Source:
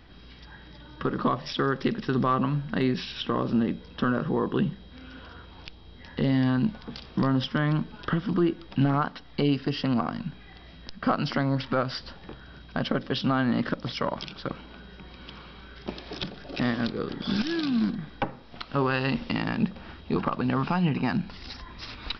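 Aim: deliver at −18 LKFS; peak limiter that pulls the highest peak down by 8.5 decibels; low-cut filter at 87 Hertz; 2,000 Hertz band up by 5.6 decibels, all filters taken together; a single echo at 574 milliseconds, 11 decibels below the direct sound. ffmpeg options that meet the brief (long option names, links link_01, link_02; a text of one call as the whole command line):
ffmpeg -i in.wav -af "highpass=87,equalizer=frequency=2000:width_type=o:gain=7.5,alimiter=limit=-17.5dB:level=0:latency=1,aecho=1:1:574:0.282,volume=11.5dB" out.wav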